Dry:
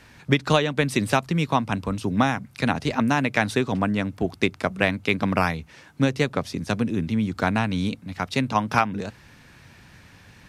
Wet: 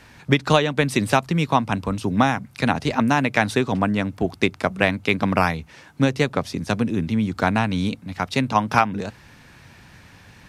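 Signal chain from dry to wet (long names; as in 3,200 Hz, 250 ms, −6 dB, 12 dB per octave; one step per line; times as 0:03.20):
parametric band 840 Hz +2 dB
level +2 dB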